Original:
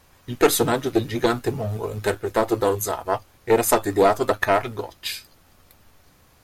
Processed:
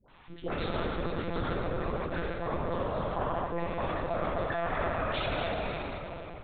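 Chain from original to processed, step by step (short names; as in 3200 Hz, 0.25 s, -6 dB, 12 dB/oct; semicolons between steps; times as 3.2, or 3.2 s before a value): on a send: thinning echo 0.255 s, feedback 57%, high-pass 550 Hz, level -17 dB; on the sum: reverb RT60 3.5 s, pre-delay 6 ms, DRR -4 dB; reverse; compressor 12:1, threshold -24 dBFS, peak gain reduction 17.5 dB; reverse; bell 1100 Hz +2.5 dB 0.77 oct; limiter -19 dBFS, peak gain reduction 4.5 dB; tilt +1.5 dB/oct; dispersion highs, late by 99 ms, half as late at 780 Hz; monotone LPC vocoder at 8 kHz 170 Hz; gain -2 dB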